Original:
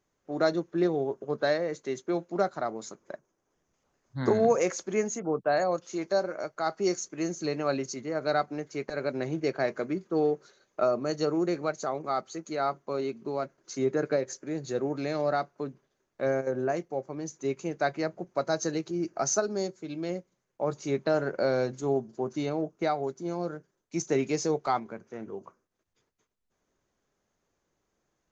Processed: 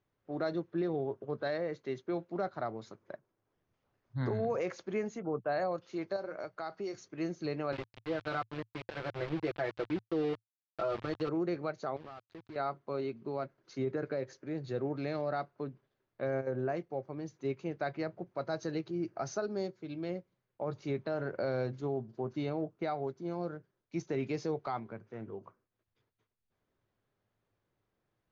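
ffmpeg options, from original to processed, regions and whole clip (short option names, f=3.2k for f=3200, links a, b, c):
-filter_complex "[0:a]asettb=1/sr,asplit=3[a][b][c];[a]atrim=end=6.164[d];[b]atrim=start=6.16:end=6.95,asetpts=PTS-STARTPTS,afade=t=in:d=0.004:c=qsin,afade=t=out:st=0.786:d=0.004:c=qsin,bass=f=250:g=-3,treble=f=4k:g=3,bandreject=f=60:t=h:w=6,bandreject=f=120:t=h:w=6,bandreject=f=180:t=h:w=6,acompressor=threshold=-30dB:ratio=4:attack=3.2:release=140:knee=1:detection=peak[e];[c]atrim=start=6.946[f];[d][e]acrossfade=d=0.004:c1=hsin:c2=qsin[g];[g][f]acrossfade=d=0.004:c1=qsin:c2=hsin,asettb=1/sr,asplit=3[h][i][j];[h]atrim=end=7.724[k];[i]atrim=start=7.72:end=11.29,asetpts=PTS-STARTPTS,afade=t=in:d=0.004:c=qsin,afade=t=out:st=3.566:d=0.004:c=qsin,bass=f=250:g=-5,treble=f=4k:g=-12,aecho=1:1:5.9:0.81,atrim=end_sample=157437,aeval=exprs='val(0)*gte(abs(val(0)),0.0224)':c=same[l];[j]atrim=start=11.286[m];[k][l]acrossfade=d=0.004:c1=hsin:c2=qsin[n];[n][m]acrossfade=d=0.004:c1=qsin:c2=hsin,asettb=1/sr,asplit=3[o][p][q];[o]atrim=end=11.964[r];[p]atrim=start=11.96:end=12.56,asetpts=PTS-STARTPTS,afade=t=in:d=0.004:c=qsin,afade=t=out:st=0.596:d=0.004:c=qsin,lowpass=3.5k,acompressor=threshold=-39dB:ratio=8:attack=3.2:release=140:knee=1:detection=peak,aeval=exprs='val(0)*gte(abs(val(0)),0.00562)':c=same[s];[q]atrim=start=12.556[t];[r][s]acrossfade=d=0.004:c1=hsin:c2=qsin[u];[u][t]acrossfade=d=0.004:c1=qsin:c2=hsin,lowpass=f=4.3k:w=0.5412,lowpass=f=4.3k:w=1.3066,equalizer=f=110:t=o:w=0.45:g=12,alimiter=limit=-20dB:level=0:latency=1:release=38,volume=-5dB"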